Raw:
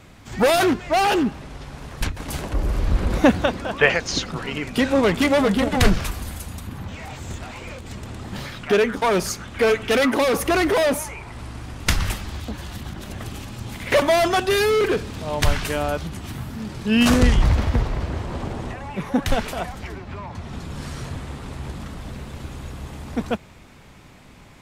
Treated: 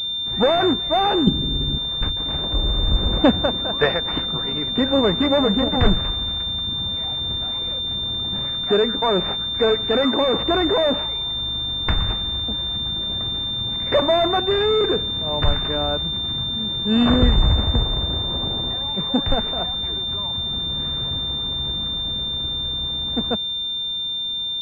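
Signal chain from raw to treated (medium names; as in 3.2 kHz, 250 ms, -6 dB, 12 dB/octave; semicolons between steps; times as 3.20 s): 1.27–1.78 s: resonant low shelf 460 Hz +12 dB, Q 1.5; class-D stage that switches slowly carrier 3.6 kHz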